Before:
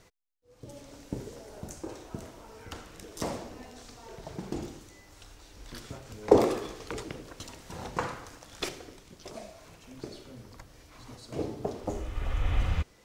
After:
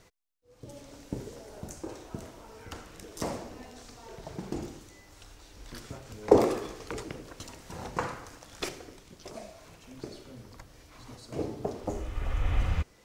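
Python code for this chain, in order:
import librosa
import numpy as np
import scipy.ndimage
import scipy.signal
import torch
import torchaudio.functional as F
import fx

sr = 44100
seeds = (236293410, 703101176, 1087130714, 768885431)

y = fx.dynamic_eq(x, sr, hz=3500.0, q=2.4, threshold_db=-57.0, ratio=4.0, max_db=-3)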